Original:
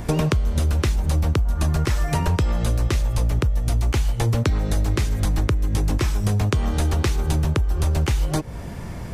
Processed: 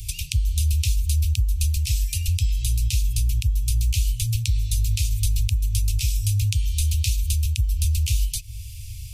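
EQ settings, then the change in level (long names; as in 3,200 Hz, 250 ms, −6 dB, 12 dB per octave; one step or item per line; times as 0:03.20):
Chebyshev band-stop filter 110–2,500 Hz, order 5
high-shelf EQ 6,000 Hz +11 dB
0.0 dB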